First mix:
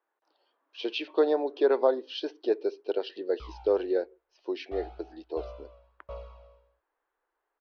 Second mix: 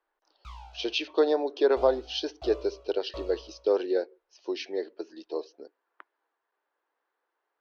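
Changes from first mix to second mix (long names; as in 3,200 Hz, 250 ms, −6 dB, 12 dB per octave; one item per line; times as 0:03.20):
background: entry −2.95 s
master: remove high-frequency loss of the air 210 metres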